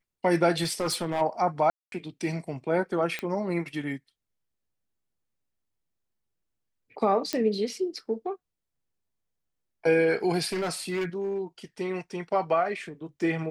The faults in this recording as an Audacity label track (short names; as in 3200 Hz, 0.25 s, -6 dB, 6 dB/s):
0.630000	1.220000	clipped -23.5 dBFS
1.700000	1.920000	gap 0.222 s
3.190000	3.190000	pop -17 dBFS
7.330000	7.330000	pop -13 dBFS
10.520000	11.410000	clipped -25.5 dBFS